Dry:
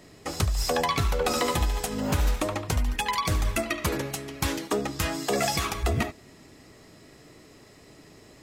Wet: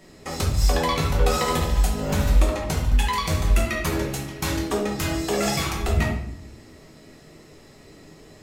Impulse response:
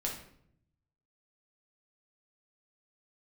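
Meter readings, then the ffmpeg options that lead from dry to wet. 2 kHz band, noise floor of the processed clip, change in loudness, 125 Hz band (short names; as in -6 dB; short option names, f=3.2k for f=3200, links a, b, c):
+2.0 dB, -49 dBFS, +4.0 dB, +5.5 dB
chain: -filter_complex "[1:a]atrim=start_sample=2205[a];[0:a][a]afir=irnorm=-1:irlink=0"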